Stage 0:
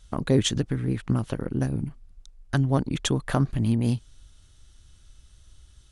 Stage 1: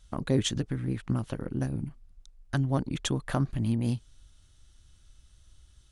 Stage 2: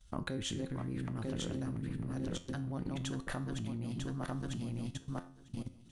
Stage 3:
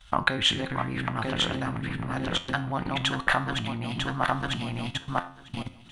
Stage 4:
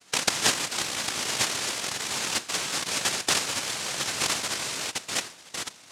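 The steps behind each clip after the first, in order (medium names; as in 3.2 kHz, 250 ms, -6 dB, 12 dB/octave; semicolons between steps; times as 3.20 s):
band-stop 430 Hz, Q 12; trim -4.5 dB
backward echo that repeats 474 ms, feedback 59%, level -4.5 dB; level held to a coarse grid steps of 20 dB; feedback comb 88 Hz, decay 0.45 s, harmonics all, mix 60%; trim +8 dB
high-order bell 1.6 kHz +14 dB 2.8 oct; trim +6 dB
noise-vocoded speech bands 1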